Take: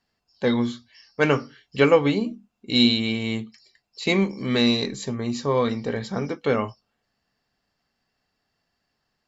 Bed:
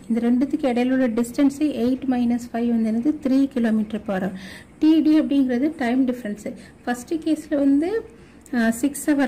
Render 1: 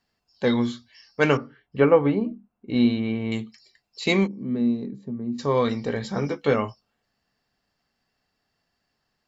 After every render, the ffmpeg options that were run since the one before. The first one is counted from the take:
-filter_complex "[0:a]asettb=1/sr,asplit=3[a][b][c];[a]atrim=end=1.374[d];[b]atrim=start=1.37:end=3.32,asetpts=PTS-STARTPTS,afade=t=in:d=0.004:c=qsin,afade=t=out:st=1.946:d=0.004:c=qsin,lowpass=1.5k[e];[c]atrim=start=3.316[f];[d][e]acrossfade=d=0.004:c1=hsin:c2=qsin[g];[g][f]acrossfade=d=0.004:c1=qsin:c2=hsin,asplit=3[h][i][j];[h]afade=t=out:st=4.26:d=0.02[k];[i]bandpass=f=210:t=q:w=1.7,afade=t=in:st=4.26:d=0.02,afade=t=out:st=5.38:d=0.02[l];[j]afade=t=in:st=5.38:d=0.02[m];[k][l][m]amix=inputs=3:normalize=0,asettb=1/sr,asplit=3[n][o][p];[n]atrim=end=6.034[q];[o]atrim=start=6.03:end=6.54,asetpts=PTS-STARTPTS,afade=t=in:d=0.004:c=qsin,afade=t=out:st=0.506:d=0.004:c=qsin,asplit=2[r][s];[s]adelay=14,volume=-7dB[t];[r][t]amix=inputs=2:normalize=0,atrim=end_sample=22491[u];[p]atrim=start=6.536[v];[q][u]acrossfade=d=0.004:c1=hsin:c2=qsin[w];[w][v]acrossfade=d=0.004:c1=qsin:c2=hsin"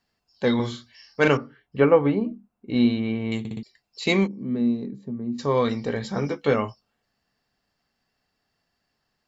-filter_complex "[0:a]asettb=1/sr,asplit=3[a][b][c];[a]atrim=end=0.554[d];[b]atrim=start=0.55:end=1.28,asetpts=PTS-STARTPTS,afade=t=in:d=0.004:c=qsin,afade=t=out:st=0.726:d=0.004:c=qsin,asplit=2[e][f];[f]adelay=44,volume=-3dB[g];[e][g]amix=inputs=2:normalize=0,atrim=end_sample=32193[h];[c]atrim=start=1.276[i];[d][h]acrossfade=d=0.004:c1=hsin:c2=qsin[j];[j][i]acrossfade=d=0.004:c1=qsin:c2=hsin,asplit=5[k][l][m][n][o];[k]atrim=end=3.452[p];[l]atrim=start=3.388:end=3.452[q];[m]atrim=start=3.388:end=3.452[r];[n]atrim=start=3.388:end=3.452[s];[o]atrim=start=3.628[t];[p][q]acrossfade=d=0.004:c1=hsin:c2=hsin[u];[u][r]acrossfade=d=0.004:c1=hsin:c2=hsin[v];[v][s]acrossfade=d=0.004:c1=hsin:c2=hsin[w];[w][t]acrossfade=d=0.004:c1=hsin:c2=hsin"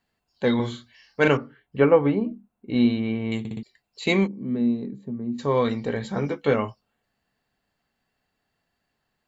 -af "equalizer=f=5.3k:w=4:g=-12,bandreject=f=1.2k:w=24"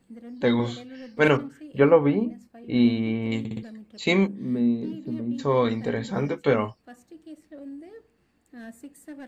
-filter_complex "[1:a]volume=-22dB[a];[0:a][a]amix=inputs=2:normalize=0"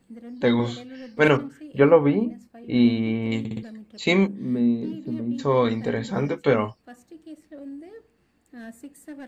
-af "volume=1.5dB"

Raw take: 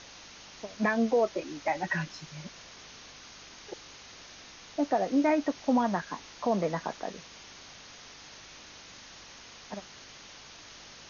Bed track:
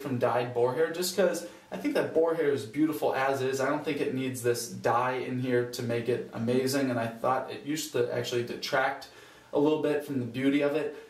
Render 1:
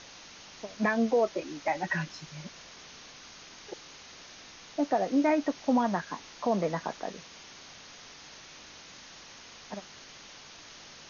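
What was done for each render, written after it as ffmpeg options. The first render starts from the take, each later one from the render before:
-af "bandreject=f=50:t=h:w=4,bandreject=f=100:t=h:w=4"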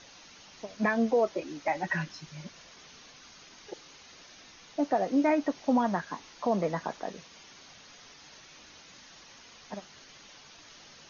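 -af "afftdn=nr=6:nf=-50"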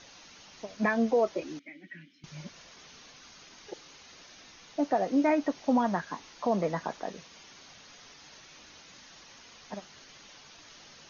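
-filter_complex "[0:a]asettb=1/sr,asplit=3[a][b][c];[a]atrim=end=1.594[d];[b]atrim=start=1.59:end=2.24,asetpts=PTS-STARTPTS,afade=t=in:d=0.004:c=qsin,afade=t=out:st=0.646:d=0.004:c=qsin,asplit=3[e][f][g];[e]bandpass=f=270:t=q:w=8,volume=0dB[h];[f]bandpass=f=2.29k:t=q:w=8,volume=-6dB[i];[g]bandpass=f=3.01k:t=q:w=8,volume=-9dB[j];[h][i][j]amix=inputs=3:normalize=0[k];[c]atrim=start=2.236[l];[d][k]acrossfade=d=0.004:c1=hsin:c2=qsin[m];[m][l]acrossfade=d=0.004:c1=qsin:c2=hsin"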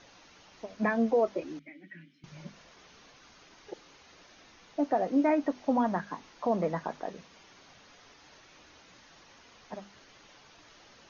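-af "highshelf=f=2.9k:g=-9.5,bandreject=f=50:t=h:w=6,bandreject=f=100:t=h:w=6,bandreject=f=150:t=h:w=6,bandreject=f=200:t=h:w=6,bandreject=f=250:t=h:w=6"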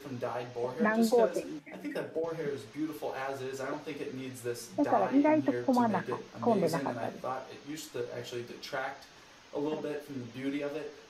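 -filter_complex "[1:a]volume=-9dB[a];[0:a][a]amix=inputs=2:normalize=0"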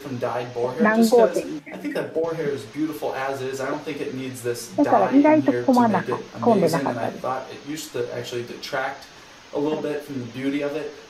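-af "volume=10dB"

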